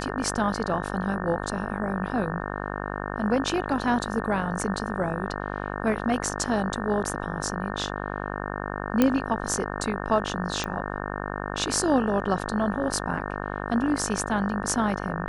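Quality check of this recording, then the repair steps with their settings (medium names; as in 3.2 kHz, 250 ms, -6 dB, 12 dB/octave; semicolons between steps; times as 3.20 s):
buzz 50 Hz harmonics 36 -32 dBFS
9.02 s: pop -7 dBFS
10.64 s: pop -16 dBFS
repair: de-click; de-hum 50 Hz, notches 36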